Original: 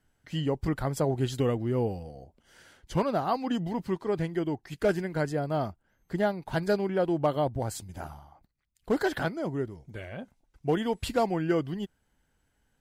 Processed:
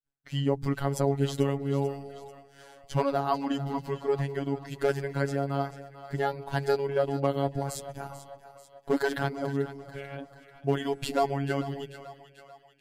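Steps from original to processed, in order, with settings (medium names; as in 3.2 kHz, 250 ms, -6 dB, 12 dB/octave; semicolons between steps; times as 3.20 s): robot voice 139 Hz; expander -57 dBFS; two-band feedback delay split 540 Hz, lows 196 ms, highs 440 ms, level -13.5 dB; trim +2.5 dB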